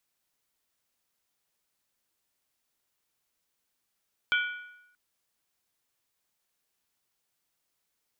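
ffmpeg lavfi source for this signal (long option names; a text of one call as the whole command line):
ffmpeg -f lavfi -i "aevalsrc='0.0794*pow(10,-3*t/0.87)*sin(2*PI*1460*t)+0.0501*pow(10,-3*t/0.689)*sin(2*PI*2327.2*t)+0.0316*pow(10,-3*t/0.595)*sin(2*PI*3118.6*t)+0.02*pow(10,-3*t/0.574)*sin(2*PI*3352.2*t)':duration=0.63:sample_rate=44100" out.wav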